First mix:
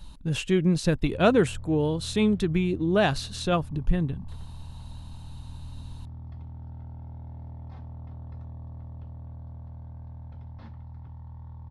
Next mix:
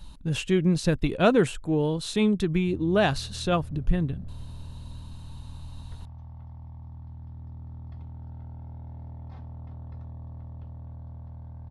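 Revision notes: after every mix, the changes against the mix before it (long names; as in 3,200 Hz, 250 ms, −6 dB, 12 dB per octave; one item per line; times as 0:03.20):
background: entry +1.60 s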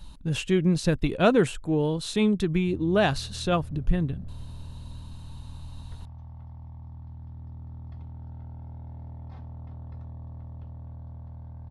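nothing changed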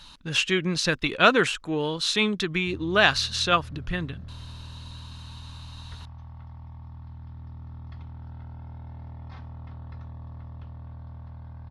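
speech: add low-shelf EQ 170 Hz −12 dB
master: add flat-topped bell 2,600 Hz +10 dB 2.9 octaves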